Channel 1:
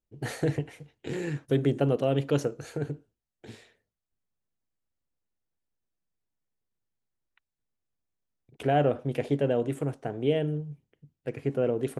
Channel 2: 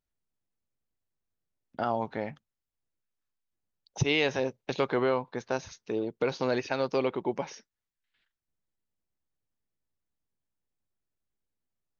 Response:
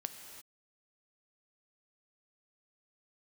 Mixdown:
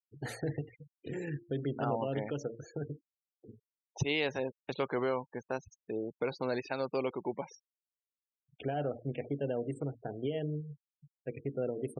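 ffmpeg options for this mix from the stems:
-filter_complex "[0:a]highshelf=frequency=5600:gain=6,bandreject=frequency=115.4:width_type=h:width=4,bandreject=frequency=230.8:width_type=h:width=4,bandreject=frequency=346.2:width_type=h:width=4,bandreject=frequency=461.6:width_type=h:width=4,bandreject=frequency=577:width_type=h:width=4,bandreject=frequency=692.4:width_type=h:width=4,bandreject=frequency=807.8:width_type=h:width=4,bandreject=frequency=923.2:width_type=h:width=4,bandreject=frequency=1038.6:width_type=h:width=4,bandreject=frequency=1154:width_type=h:width=4,bandreject=frequency=1269.4:width_type=h:width=4,bandreject=frequency=1384.8:width_type=h:width=4,bandreject=frequency=1500.2:width_type=h:width=4,bandreject=frequency=1615.6:width_type=h:width=4,bandreject=frequency=1731:width_type=h:width=4,bandreject=frequency=1846.4:width_type=h:width=4,bandreject=frequency=1961.8:width_type=h:width=4,bandreject=frequency=2077.2:width_type=h:width=4,bandreject=frequency=2192.6:width_type=h:width=4,bandreject=frequency=2308:width_type=h:width=4,alimiter=limit=-19.5dB:level=0:latency=1:release=197,volume=-5.5dB[link_01];[1:a]volume=-5.5dB[link_02];[link_01][link_02]amix=inputs=2:normalize=0,afftfilt=real='re*gte(hypot(re,im),0.00708)':imag='im*gte(hypot(re,im),0.00708)':win_size=1024:overlap=0.75"

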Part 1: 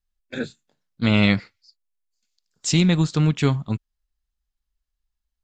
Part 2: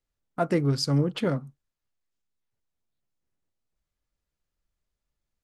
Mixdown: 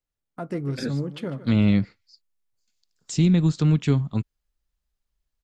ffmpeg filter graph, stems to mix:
ffmpeg -i stem1.wav -i stem2.wav -filter_complex "[0:a]adelay=450,volume=0dB[link_01];[1:a]volume=-4dB,asplit=2[link_02][link_03];[link_03]volume=-16dB,aecho=0:1:148:1[link_04];[link_01][link_02][link_04]amix=inputs=3:normalize=0,acrossover=split=420[link_05][link_06];[link_06]acompressor=threshold=-36dB:ratio=3[link_07];[link_05][link_07]amix=inputs=2:normalize=0" out.wav

